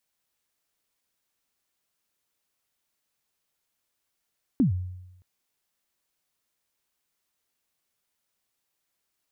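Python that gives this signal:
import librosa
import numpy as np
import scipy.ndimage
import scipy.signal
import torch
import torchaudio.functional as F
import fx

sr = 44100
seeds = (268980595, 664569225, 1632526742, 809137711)

y = fx.drum_kick(sr, seeds[0], length_s=0.62, level_db=-15.5, start_hz=300.0, end_hz=91.0, sweep_ms=118.0, decay_s=0.94, click=False)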